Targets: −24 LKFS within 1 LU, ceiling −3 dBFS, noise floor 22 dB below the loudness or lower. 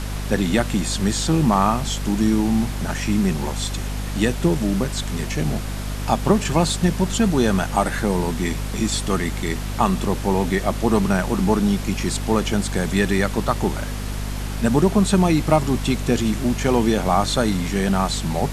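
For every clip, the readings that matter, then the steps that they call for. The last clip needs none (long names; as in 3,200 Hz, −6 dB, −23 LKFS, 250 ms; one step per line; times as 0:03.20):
mains hum 50 Hz; hum harmonics up to 250 Hz; level of the hum −25 dBFS; background noise floor −27 dBFS; target noise floor −43 dBFS; integrated loudness −21.0 LKFS; sample peak −2.0 dBFS; target loudness −24.0 LKFS
→ hum removal 50 Hz, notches 5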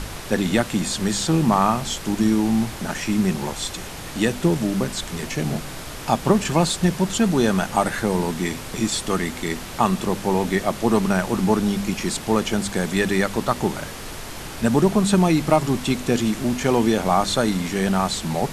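mains hum none found; background noise floor −34 dBFS; target noise floor −44 dBFS
→ noise reduction from a noise print 10 dB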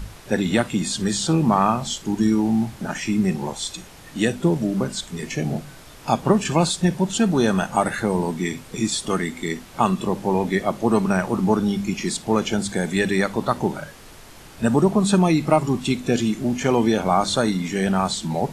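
background noise floor −43 dBFS; target noise floor −44 dBFS
→ noise reduction from a noise print 6 dB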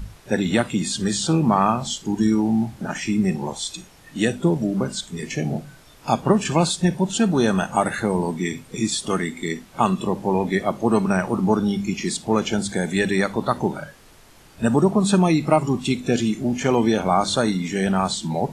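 background noise floor −49 dBFS; integrated loudness −22.0 LKFS; sample peak −3.0 dBFS; target loudness −24.0 LKFS
→ level −2 dB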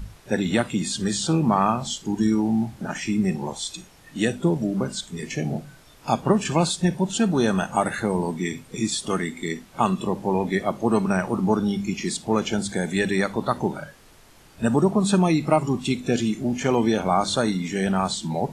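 integrated loudness −24.0 LKFS; sample peak −5.0 dBFS; background noise floor −51 dBFS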